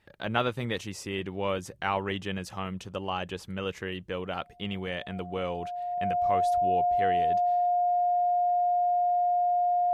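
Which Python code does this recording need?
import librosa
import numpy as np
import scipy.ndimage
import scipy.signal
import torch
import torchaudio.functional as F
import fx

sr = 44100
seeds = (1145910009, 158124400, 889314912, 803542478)

y = fx.notch(x, sr, hz=710.0, q=30.0)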